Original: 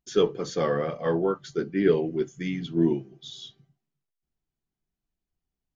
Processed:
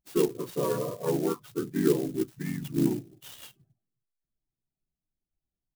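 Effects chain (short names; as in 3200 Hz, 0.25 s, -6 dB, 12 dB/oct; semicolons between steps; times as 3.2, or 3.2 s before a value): harmoniser -3 st 0 dB; loudest bins only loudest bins 32; clock jitter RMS 0.058 ms; gain -6 dB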